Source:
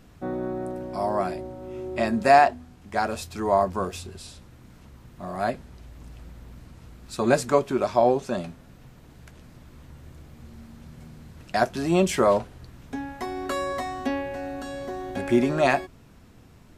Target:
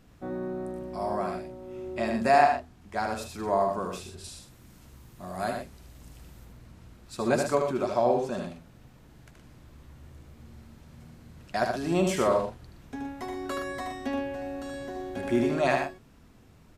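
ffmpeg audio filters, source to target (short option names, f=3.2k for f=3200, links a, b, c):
-filter_complex "[0:a]asettb=1/sr,asplit=3[a][b][c];[a]atrim=end=4.244[d];[b]atrim=start=4.24:end=6.45,asetpts=PTS-STARTPTS,afade=t=in:d=0.004:c=qsin,afade=t=out:st=2.206:d=0.004:c=qsin,highshelf=f=5.1k:g=11[e];[c]atrim=start=6.446[f];[d][e]acrossfade=d=0.004:c1=hsin:c2=qsin[g];[g][f]acrossfade=d=0.004:c1=qsin:c2=hsin,aecho=1:1:75.8|119.5:0.562|0.355,volume=-5.5dB"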